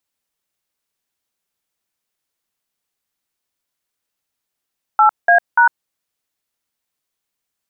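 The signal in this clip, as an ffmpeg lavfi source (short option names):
-f lavfi -i "aevalsrc='0.316*clip(min(mod(t,0.292),0.103-mod(t,0.292))/0.002,0,1)*(eq(floor(t/0.292),0)*(sin(2*PI*852*mod(t,0.292))+sin(2*PI*1336*mod(t,0.292)))+eq(floor(t/0.292),1)*(sin(2*PI*697*mod(t,0.292))+sin(2*PI*1633*mod(t,0.292)))+eq(floor(t/0.292),2)*(sin(2*PI*941*mod(t,0.292))+sin(2*PI*1477*mod(t,0.292))))':d=0.876:s=44100"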